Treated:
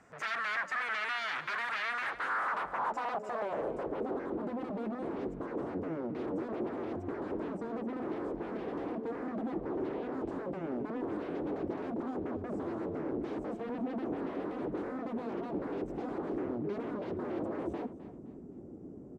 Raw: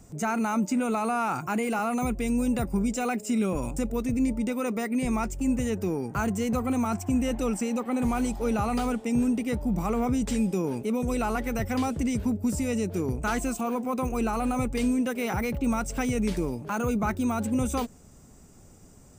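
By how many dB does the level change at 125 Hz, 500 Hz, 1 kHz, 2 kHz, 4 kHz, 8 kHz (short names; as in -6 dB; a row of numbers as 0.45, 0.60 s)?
-14.5 dB, -5.5 dB, -7.0 dB, -1.5 dB, n/a, under -25 dB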